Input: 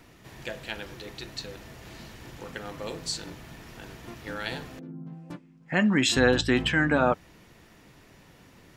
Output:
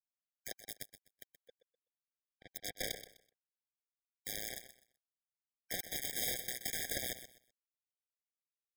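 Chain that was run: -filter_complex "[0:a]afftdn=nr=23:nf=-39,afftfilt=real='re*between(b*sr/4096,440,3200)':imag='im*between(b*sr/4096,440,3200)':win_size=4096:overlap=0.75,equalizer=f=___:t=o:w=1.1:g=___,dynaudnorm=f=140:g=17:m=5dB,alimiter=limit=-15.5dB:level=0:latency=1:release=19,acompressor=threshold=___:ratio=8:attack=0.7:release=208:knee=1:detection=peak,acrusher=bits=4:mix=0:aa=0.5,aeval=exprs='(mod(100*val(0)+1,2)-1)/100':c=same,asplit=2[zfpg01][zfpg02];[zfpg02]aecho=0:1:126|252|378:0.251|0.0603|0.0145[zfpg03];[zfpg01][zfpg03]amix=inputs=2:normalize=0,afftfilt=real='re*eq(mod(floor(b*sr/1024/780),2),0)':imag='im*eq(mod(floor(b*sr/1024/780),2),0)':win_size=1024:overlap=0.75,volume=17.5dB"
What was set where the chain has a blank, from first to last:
960, -8, -32dB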